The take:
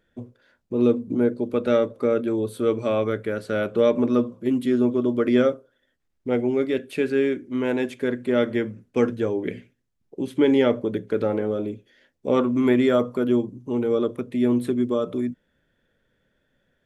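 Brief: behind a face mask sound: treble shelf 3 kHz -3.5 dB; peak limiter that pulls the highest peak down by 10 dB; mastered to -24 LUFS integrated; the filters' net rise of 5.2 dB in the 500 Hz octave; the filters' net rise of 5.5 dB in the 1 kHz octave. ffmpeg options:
-af "equalizer=f=500:t=o:g=5,equalizer=f=1000:t=o:g=6.5,alimiter=limit=0.224:level=0:latency=1,highshelf=f=3000:g=-3.5,volume=0.891"

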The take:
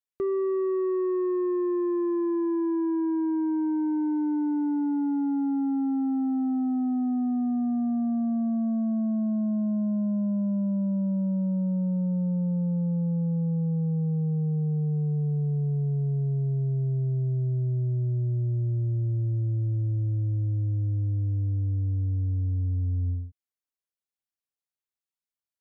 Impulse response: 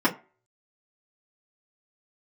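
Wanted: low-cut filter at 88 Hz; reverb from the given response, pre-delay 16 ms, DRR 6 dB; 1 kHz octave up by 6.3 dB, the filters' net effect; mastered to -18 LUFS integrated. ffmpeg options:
-filter_complex "[0:a]highpass=88,equalizer=f=1000:t=o:g=7.5,asplit=2[s0][s1];[1:a]atrim=start_sample=2205,adelay=16[s2];[s1][s2]afir=irnorm=-1:irlink=0,volume=0.0891[s3];[s0][s3]amix=inputs=2:normalize=0,volume=2.11"

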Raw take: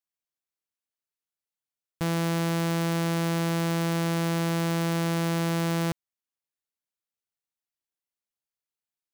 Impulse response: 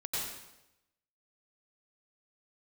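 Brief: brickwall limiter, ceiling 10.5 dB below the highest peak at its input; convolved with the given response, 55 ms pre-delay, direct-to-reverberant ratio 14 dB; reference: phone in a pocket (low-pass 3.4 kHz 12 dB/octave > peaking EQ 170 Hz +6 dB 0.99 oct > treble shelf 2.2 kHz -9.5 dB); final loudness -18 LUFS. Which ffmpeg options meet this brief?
-filter_complex "[0:a]alimiter=level_in=2.51:limit=0.0631:level=0:latency=1,volume=0.398,asplit=2[s0][s1];[1:a]atrim=start_sample=2205,adelay=55[s2];[s1][s2]afir=irnorm=-1:irlink=0,volume=0.126[s3];[s0][s3]amix=inputs=2:normalize=0,lowpass=3400,equalizer=f=170:t=o:w=0.99:g=6,highshelf=f=2200:g=-9.5,volume=6.31"

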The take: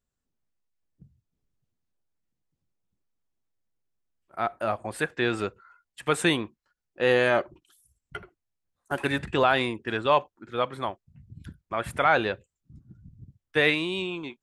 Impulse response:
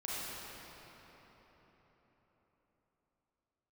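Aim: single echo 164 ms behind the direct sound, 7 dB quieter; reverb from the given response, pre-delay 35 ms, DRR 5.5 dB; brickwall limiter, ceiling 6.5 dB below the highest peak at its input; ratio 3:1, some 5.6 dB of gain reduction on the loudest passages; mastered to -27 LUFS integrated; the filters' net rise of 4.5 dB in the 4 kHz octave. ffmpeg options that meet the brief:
-filter_complex "[0:a]equalizer=f=4000:t=o:g=5.5,acompressor=threshold=0.0708:ratio=3,alimiter=limit=0.15:level=0:latency=1,aecho=1:1:164:0.447,asplit=2[s0][s1];[1:a]atrim=start_sample=2205,adelay=35[s2];[s1][s2]afir=irnorm=-1:irlink=0,volume=0.355[s3];[s0][s3]amix=inputs=2:normalize=0,volume=1.5"

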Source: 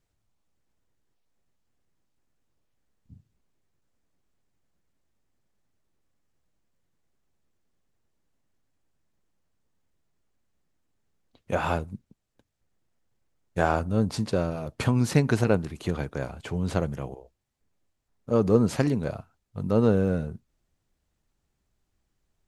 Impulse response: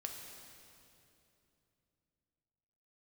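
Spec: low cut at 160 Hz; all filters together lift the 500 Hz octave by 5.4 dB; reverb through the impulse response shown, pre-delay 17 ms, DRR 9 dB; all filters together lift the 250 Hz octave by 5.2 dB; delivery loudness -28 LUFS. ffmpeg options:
-filter_complex "[0:a]highpass=160,equalizer=f=250:t=o:g=6.5,equalizer=f=500:t=o:g=4.5,asplit=2[s0][s1];[1:a]atrim=start_sample=2205,adelay=17[s2];[s1][s2]afir=irnorm=-1:irlink=0,volume=0.422[s3];[s0][s3]amix=inputs=2:normalize=0,volume=0.501"

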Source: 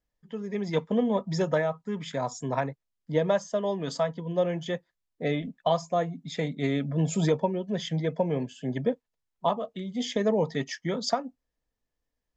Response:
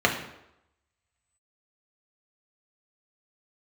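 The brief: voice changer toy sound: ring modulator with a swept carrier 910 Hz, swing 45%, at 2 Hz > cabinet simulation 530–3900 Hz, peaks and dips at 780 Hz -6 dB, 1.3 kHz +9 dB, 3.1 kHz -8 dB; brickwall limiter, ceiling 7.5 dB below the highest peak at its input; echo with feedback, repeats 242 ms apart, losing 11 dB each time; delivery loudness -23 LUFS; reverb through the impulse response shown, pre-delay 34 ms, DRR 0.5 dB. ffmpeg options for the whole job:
-filter_complex "[0:a]alimiter=limit=0.112:level=0:latency=1,aecho=1:1:242|484|726:0.282|0.0789|0.0221,asplit=2[s0][s1];[1:a]atrim=start_sample=2205,adelay=34[s2];[s1][s2]afir=irnorm=-1:irlink=0,volume=0.133[s3];[s0][s3]amix=inputs=2:normalize=0,aeval=exprs='val(0)*sin(2*PI*910*n/s+910*0.45/2*sin(2*PI*2*n/s))':c=same,highpass=530,equalizer=f=780:t=q:w=4:g=-6,equalizer=f=1300:t=q:w=4:g=9,equalizer=f=3100:t=q:w=4:g=-8,lowpass=f=3900:w=0.5412,lowpass=f=3900:w=1.3066,volume=1.88"

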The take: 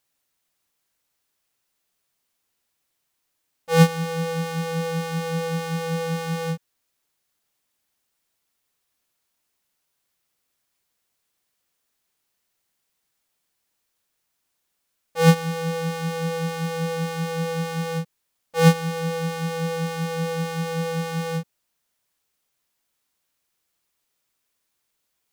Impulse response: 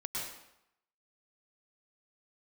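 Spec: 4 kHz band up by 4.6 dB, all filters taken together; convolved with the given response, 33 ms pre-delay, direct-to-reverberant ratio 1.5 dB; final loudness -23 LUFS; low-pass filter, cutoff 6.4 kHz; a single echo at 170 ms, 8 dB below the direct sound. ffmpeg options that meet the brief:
-filter_complex "[0:a]lowpass=6400,equalizer=f=4000:t=o:g=6.5,aecho=1:1:170:0.398,asplit=2[s0][s1];[1:a]atrim=start_sample=2205,adelay=33[s2];[s1][s2]afir=irnorm=-1:irlink=0,volume=0.631[s3];[s0][s3]amix=inputs=2:normalize=0,volume=0.75"

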